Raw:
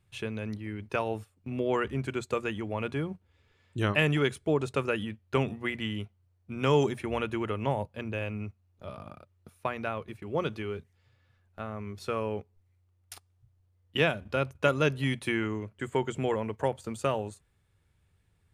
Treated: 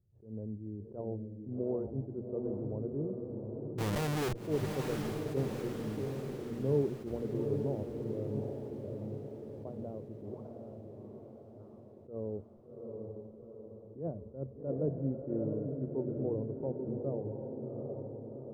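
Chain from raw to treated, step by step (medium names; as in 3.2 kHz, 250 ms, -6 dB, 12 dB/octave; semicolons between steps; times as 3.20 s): inverse Chebyshev low-pass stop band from 3.2 kHz, stop band 80 dB; 3.78–4.40 s: Schmitt trigger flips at -43.5 dBFS; 10.34–12.01 s: spectral gate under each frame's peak -25 dB weak; echo that smears into a reverb 773 ms, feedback 57%, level -4 dB; attacks held to a fixed rise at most 160 dB/s; trim -4.5 dB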